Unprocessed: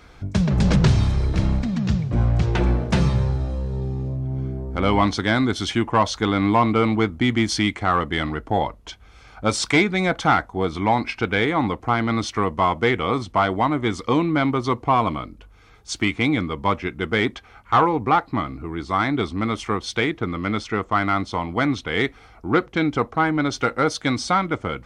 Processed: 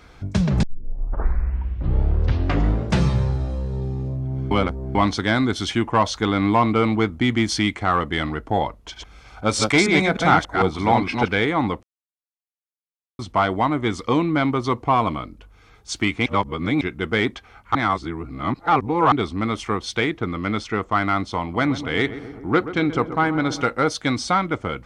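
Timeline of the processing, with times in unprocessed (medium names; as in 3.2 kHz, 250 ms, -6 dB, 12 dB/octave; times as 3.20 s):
0.63 s: tape start 2.38 s
4.51–4.95 s: reverse
8.80–11.33 s: chunks repeated in reverse 152 ms, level -2 dB
11.83–13.19 s: mute
16.26–16.81 s: reverse
17.75–19.12 s: reverse
21.41–23.63 s: filtered feedback delay 128 ms, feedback 73%, low-pass 1.3 kHz, level -12 dB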